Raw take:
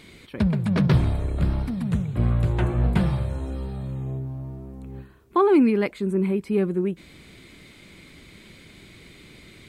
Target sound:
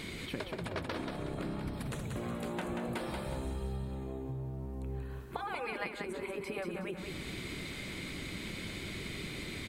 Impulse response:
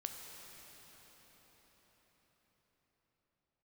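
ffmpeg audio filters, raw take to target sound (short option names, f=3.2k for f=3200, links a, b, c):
-filter_complex "[0:a]asettb=1/sr,asplit=3[a][b][c];[a]atrim=end=1.734[d];[b]atrim=start=1.73:end=3.76,asetpts=PTS-STARTPTS,afade=t=in:d=0.004:c=qsin,afade=t=out:st=2.026:d=0.004:c=qsin,highshelf=f=5.8k:g=9[e];[c]atrim=start=3.756[f];[d][e]acrossfade=d=0.004:c1=hsin:c2=qsin[g];[g][f]acrossfade=d=0.004:c1=qsin:c2=hsin,afftfilt=real='re*lt(hypot(re,im),0.355)':imag='im*lt(hypot(re,im),0.355)':win_size=1024:overlap=0.75,acompressor=threshold=-43dB:ratio=6,aecho=1:1:184|368|552|736|920:0.562|0.208|0.077|0.0285|0.0105,volume=6dB"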